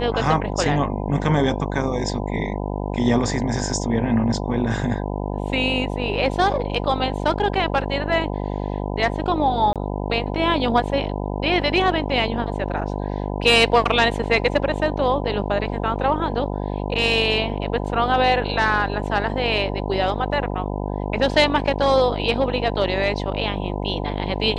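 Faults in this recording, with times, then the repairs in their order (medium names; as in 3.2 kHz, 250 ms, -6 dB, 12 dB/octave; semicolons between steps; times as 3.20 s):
buzz 50 Hz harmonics 20 -26 dBFS
9.73–9.76 s: dropout 27 ms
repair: de-hum 50 Hz, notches 20; interpolate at 9.73 s, 27 ms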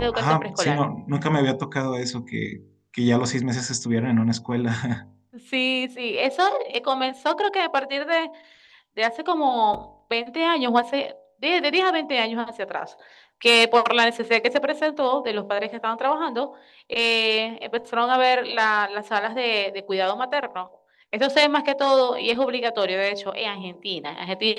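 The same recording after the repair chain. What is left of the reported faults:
nothing left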